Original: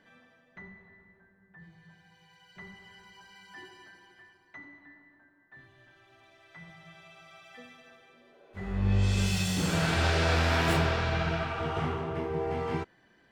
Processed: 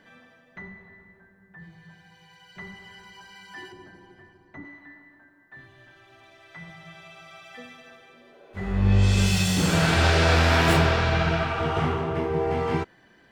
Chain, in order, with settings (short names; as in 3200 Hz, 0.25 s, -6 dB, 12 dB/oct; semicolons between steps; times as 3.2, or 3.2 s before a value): 3.72–4.65 tilt shelf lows +9 dB, about 790 Hz; gain +6.5 dB